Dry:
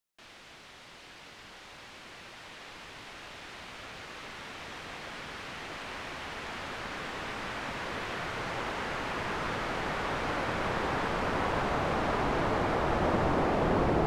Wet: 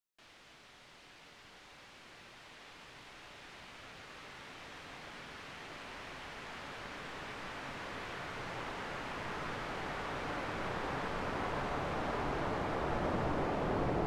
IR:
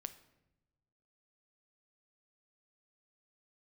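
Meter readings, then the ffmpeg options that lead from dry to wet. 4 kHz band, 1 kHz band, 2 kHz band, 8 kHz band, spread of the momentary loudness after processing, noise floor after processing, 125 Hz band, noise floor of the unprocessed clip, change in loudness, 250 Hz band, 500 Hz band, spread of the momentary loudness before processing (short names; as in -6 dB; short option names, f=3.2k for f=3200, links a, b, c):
-7.0 dB, -7.0 dB, -7.0 dB, -7.5 dB, 20 LU, -58 dBFS, -6.5 dB, -51 dBFS, -7.0 dB, -7.0 dB, -7.0 dB, 20 LU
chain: -filter_complex "[1:a]atrim=start_sample=2205[a];[0:a][a]afir=irnorm=-1:irlink=0,volume=-3.5dB"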